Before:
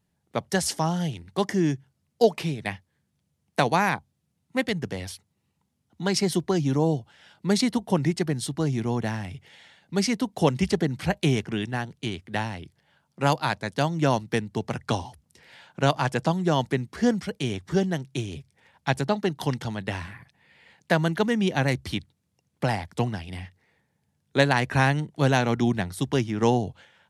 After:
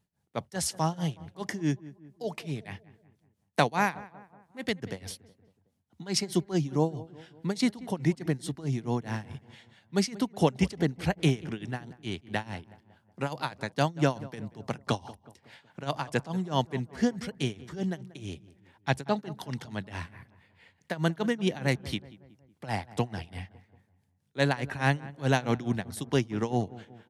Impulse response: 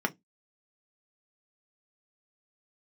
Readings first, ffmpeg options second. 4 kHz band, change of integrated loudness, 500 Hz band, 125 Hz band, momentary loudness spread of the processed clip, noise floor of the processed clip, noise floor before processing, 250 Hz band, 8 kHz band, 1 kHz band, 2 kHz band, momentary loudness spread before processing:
-5.0 dB, -5.0 dB, -6.0 dB, -5.0 dB, 14 LU, -72 dBFS, -75 dBFS, -5.0 dB, -4.0 dB, -5.5 dB, -5.5 dB, 11 LU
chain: -filter_complex "[0:a]tremolo=f=4.7:d=0.9,asplit=2[s0][s1];[s1]adelay=185,lowpass=f=1700:p=1,volume=0.126,asplit=2[s2][s3];[s3]adelay=185,lowpass=f=1700:p=1,volume=0.52,asplit=2[s4][s5];[s5]adelay=185,lowpass=f=1700:p=1,volume=0.52,asplit=2[s6][s7];[s7]adelay=185,lowpass=f=1700:p=1,volume=0.52[s8];[s0][s2][s4][s6][s8]amix=inputs=5:normalize=0,volume=0.891"

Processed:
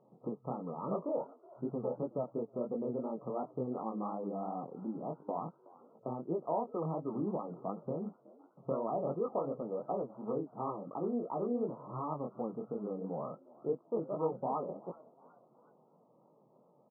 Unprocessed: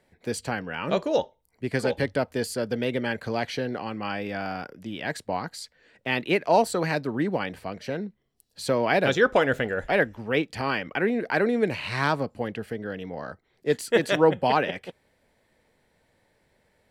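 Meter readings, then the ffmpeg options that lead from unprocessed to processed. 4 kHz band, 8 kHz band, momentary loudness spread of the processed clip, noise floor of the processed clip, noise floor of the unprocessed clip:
under -40 dB, under -40 dB, 7 LU, -67 dBFS, -69 dBFS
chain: -filter_complex "[0:a]acompressor=threshold=0.0112:ratio=3,afftfilt=real='re*between(b*sr/4096,120,1300)':imag='im*between(b*sr/4096,120,1300)':win_size=4096:overlap=0.75,flanger=delay=17.5:depth=7.6:speed=2.8,asplit=4[s0][s1][s2][s3];[s1]adelay=371,afreqshift=75,volume=0.0794[s4];[s2]adelay=742,afreqshift=150,volume=0.0351[s5];[s3]adelay=1113,afreqshift=225,volume=0.0153[s6];[s0][s4][s5][s6]amix=inputs=4:normalize=0,volume=1.88"

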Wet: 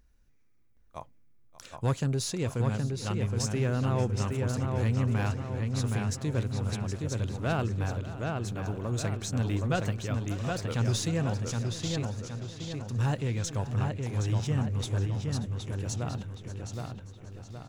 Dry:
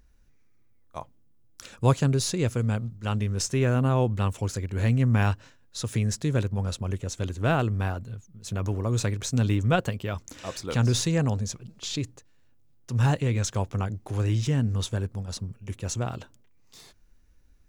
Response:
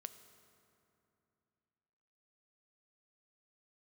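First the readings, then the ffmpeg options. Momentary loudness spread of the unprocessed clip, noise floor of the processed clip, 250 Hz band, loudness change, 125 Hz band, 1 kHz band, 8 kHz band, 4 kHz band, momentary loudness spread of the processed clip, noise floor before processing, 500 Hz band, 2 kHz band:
13 LU, -60 dBFS, -3.5 dB, -4.0 dB, -3.0 dB, -4.5 dB, -4.0 dB, -4.0 dB, 10 LU, -58 dBFS, -4.0 dB, -4.0 dB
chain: -filter_complex "[0:a]asplit=2[s0][s1];[s1]aecho=0:1:584|1168|1752|2336:0.133|0.0627|0.0295|0.0138[s2];[s0][s2]amix=inputs=2:normalize=0,asoftclip=type=tanh:threshold=0.178,asplit=2[s3][s4];[s4]adelay=769,lowpass=f=4000:p=1,volume=0.668,asplit=2[s5][s6];[s6]adelay=769,lowpass=f=4000:p=1,volume=0.49,asplit=2[s7][s8];[s8]adelay=769,lowpass=f=4000:p=1,volume=0.49,asplit=2[s9][s10];[s10]adelay=769,lowpass=f=4000:p=1,volume=0.49,asplit=2[s11][s12];[s12]adelay=769,lowpass=f=4000:p=1,volume=0.49,asplit=2[s13][s14];[s14]adelay=769,lowpass=f=4000:p=1,volume=0.49[s15];[s5][s7][s9][s11][s13][s15]amix=inputs=6:normalize=0[s16];[s3][s16]amix=inputs=2:normalize=0,volume=0.596"

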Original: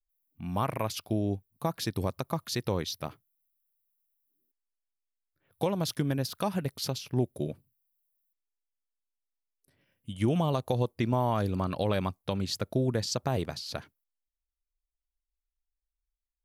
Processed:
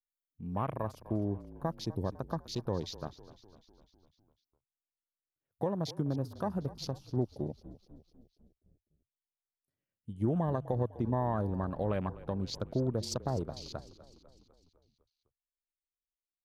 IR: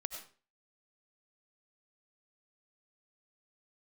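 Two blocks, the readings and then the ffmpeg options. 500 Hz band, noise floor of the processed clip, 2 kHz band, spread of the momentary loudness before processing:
-4.0 dB, under -85 dBFS, -9.5 dB, 9 LU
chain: -filter_complex "[0:a]equalizer=f=2500:t=o:w=1.9:g=-4.5,afwtdn=0.00891,asplit=7[s0][s1][s2][s3][s4][s5][s6];[s1]adelay=251,afreqshift=-35,volume=0.141[s7];[s2]adelay=502,afreqshift=-70,volume=0.0851[s8];[s3]adelay=753,afreqshift=-105,volume=0.0507[s9];[s4]adelay=1004,afreqshift=-140,volume=0.0305[s10];[s5]adelay=1255,afreqshift=-175,volume=0.0184[s11];[s6]adelay=1506,afreqshift=-210,volume=0.011[s12];[s0][s7][s8][s9][s10][s11][s12]amix=inputs=7:normalize=0,volume=0.668"

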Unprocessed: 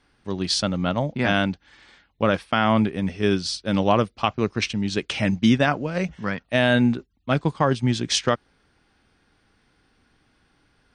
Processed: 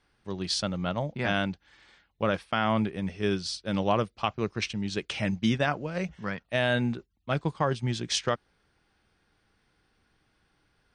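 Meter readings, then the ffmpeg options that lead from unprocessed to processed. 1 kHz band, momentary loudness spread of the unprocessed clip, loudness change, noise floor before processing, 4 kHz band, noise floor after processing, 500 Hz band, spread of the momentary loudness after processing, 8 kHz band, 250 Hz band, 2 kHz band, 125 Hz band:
-6.0 dB, 8 LU, -6.5 dB, -65 dBFS, -6.0 dB, -72 dBFS, -6.0 dB, 7 LU, -6.0 dB, -8.0 dB, -6.0 dB, -6.0 dB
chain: -af "equalizer=f=260:w=6.6:g=-8,volume=0.501"

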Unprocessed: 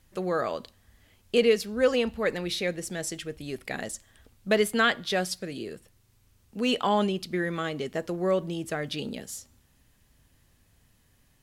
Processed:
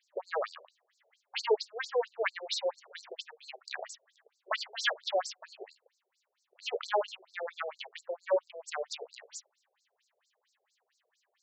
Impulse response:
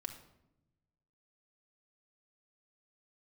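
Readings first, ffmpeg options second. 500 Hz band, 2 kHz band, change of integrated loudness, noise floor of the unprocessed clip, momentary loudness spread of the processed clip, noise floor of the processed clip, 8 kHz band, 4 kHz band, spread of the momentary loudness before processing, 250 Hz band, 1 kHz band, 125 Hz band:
-7.0 dB, -6.5 dB, -7.0 dB, -65 dBFS, 16 LU, -82 dBFS, -9.0 dB, -5.0 dB, 14 LU, under -25 dB, -5.5 dB, under -40 dB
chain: -af "aeval=exprs='0.282*(cos(1*acos(clip(val(0)/0.282,-1,1)))-cos(1*PI/2))+0.0631*(cos(4*acos(clip(val(0)/0.282,-1,1)))-cos(4*PI/2))+0.01*(cos(8*acos(clip(val(0)/0.282,-1,1)))-cos(8*PI/2))':c=same,afftfilt=real='re*between(b*sr/1024,520*pow(5900/520,0.5+0.5*sin(2*PI*4.4*pts/sr))/1.41,520*pow(5900/520,0.5+0.5*sin(2*PI*4.4*pts/sr))*1.41)':imag='im*between(b*sr/1024,520*pow(5900/520,0.5+0.5*sin(2*PI*4.4*pts/sr))/1.41,520*pow(5900/520,0.5+0.5*sin(2*PI*4.4*pts/sr))*1.41)':win_size=1024:overlap=0.75"

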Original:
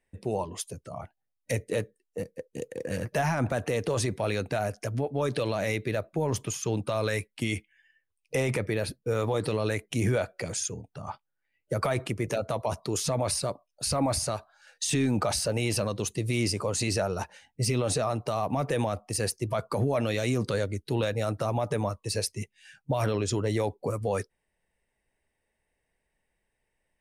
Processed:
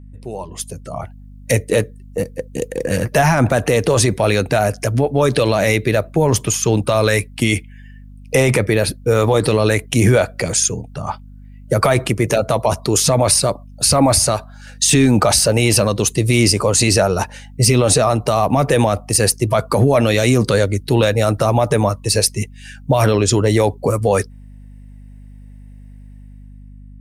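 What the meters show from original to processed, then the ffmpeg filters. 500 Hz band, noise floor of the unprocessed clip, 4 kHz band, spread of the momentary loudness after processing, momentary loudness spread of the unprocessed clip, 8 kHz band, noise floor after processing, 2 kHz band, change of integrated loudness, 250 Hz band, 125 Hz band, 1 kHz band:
+13.0 dB, -81 dBFS, +14.5 dB, 12 LU, 10 LU, +16.0 dB, -38 dBFS, +13.5 dB, +14.0 dB, +13.5 dB, +13.5 dB, +13.0 dB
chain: -af "dynaudnorm=f=170:g=9:m=5.01,aeval=exprs='val(0)+0.0141*(sin(2*PI*50*n/s)+sin(2*PI*2*50*n/s)/2+sin(2*PI*3*50*n/s)/3+sin(2*PI*4*50*n/s)/4+sin(2*PI*5*50*n/s)/5)':c=same,highshelf=f=7700:g=5"

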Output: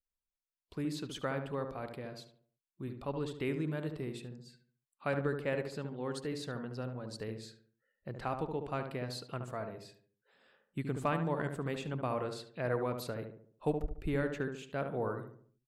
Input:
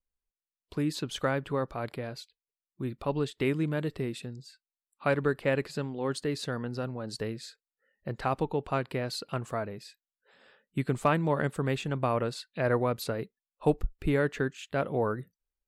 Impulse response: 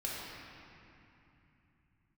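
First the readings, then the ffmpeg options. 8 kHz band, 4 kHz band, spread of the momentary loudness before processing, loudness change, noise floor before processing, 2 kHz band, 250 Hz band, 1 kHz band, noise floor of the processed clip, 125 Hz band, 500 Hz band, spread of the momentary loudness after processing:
-7.5 dB, -7.5 dB, 12 LU, -6.5 dB, under -85 dBFS, -7.0 dB, -6.0 dB, -6.5 dB, under -85 dBFS, -6.5 dB, -6.5 dB, 12 LU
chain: -filter_complex "[0:a]asplit=2[s0][s1];[s1]adelay=72,lowpass=f=1400:p=1,volume=0.531,asplit=2[s2][s3];[s3]adelay=72,lowpass=f=1400:p=1,volume=0.46,asplit=2[s4][s5];[s5]adelay=72,lowpass=f=1400:p=1,volume=0.46,asplit=2[s6][s7];[s7]adelay=72,lowpass=f=1400:p=1,volume=0.46,asplit=2[s8][s9];[s9]adelay=72,lowpass=f=1400:p=1,volume=0.46,asplit=2[s10][s11];[s11]adelay=72,lowpass=f=1400:p=1,volume=0.46[s12];[s0][s2][s4][s6][s8][s10][s12]amix=inputs=7:normalize=0,volume=0.422"

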